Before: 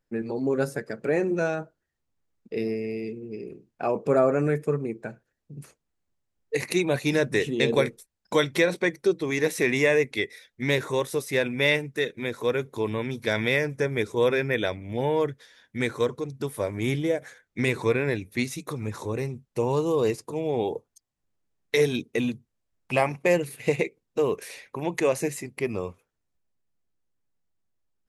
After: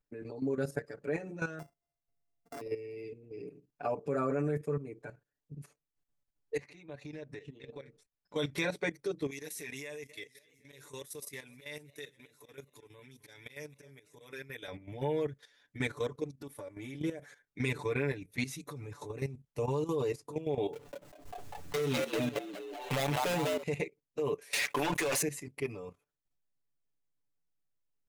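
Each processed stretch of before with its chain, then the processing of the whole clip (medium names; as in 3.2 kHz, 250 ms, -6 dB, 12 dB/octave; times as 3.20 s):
1.59–2.61 s: sorted samples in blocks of 64 samples + peaking EQ 3.1 kHz -11 dB 0.96 oct + transformer saturation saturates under 970 Hz
6.57–8.36 s: compression 4:1, threshold -39 dBFS + distance through air 96 m
9.30–14.68 s: pre-emphasis filter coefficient 0.8 + slow attack 170 ms + modulated delay 258 ms, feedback 60%, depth 128 cents, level -21 dB
16.28–17.00 s: comb 3.5 ms, depth 41% + transient shaper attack 0 dB, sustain -6 dB + compression 3:1, threshold -35 dBFS
20.73–23.63 s: dead-time distortion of 0.24 ms + frequency-shifting echo 198 ms, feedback 40%, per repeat +87 Hz, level -3.5 dB + swell ahead of each attack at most 43 dB/s
24.53–25.22 s: high-pass 1.1 kHz 6 dB/octave + waveshaping leveller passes 5 + level flattener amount 70%
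whole clip: comb 6.9 ms, depth 95%; level held to a coarse grid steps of 12 dB; trim -7 dB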